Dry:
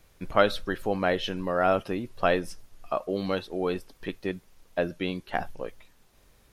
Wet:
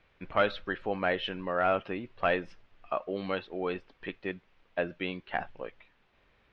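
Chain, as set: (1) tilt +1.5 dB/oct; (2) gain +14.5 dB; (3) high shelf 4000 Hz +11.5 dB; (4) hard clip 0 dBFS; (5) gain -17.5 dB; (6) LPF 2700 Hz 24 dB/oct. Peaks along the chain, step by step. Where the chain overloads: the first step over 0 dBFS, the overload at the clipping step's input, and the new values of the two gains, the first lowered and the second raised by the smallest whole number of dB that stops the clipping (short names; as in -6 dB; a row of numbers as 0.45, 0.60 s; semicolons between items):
-7.0, +7.5, +9.5, 0.0, -17.5, -16.0 dBFS; step 2, 9.5 dB; step 2 +4.5 dB, step 5 -7.5 dB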